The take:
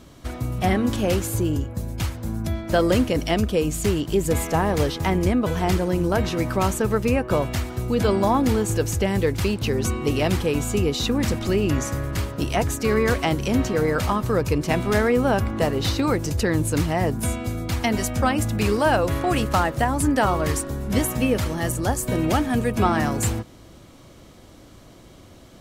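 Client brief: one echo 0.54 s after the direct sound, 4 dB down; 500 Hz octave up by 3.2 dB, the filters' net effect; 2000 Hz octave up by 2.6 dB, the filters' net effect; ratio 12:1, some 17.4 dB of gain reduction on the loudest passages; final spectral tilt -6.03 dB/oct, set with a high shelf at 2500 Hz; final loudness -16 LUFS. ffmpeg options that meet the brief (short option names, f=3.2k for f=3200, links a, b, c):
-af "equalizer=f=500:t=o:g=4,equalizer=f=2k:t=o:g=6.5,highshelf=f=2.5k:g=-8,acompressor=threshold=-31dB:ratio=12,aecho=1:1:540:0.631,volume=18dB"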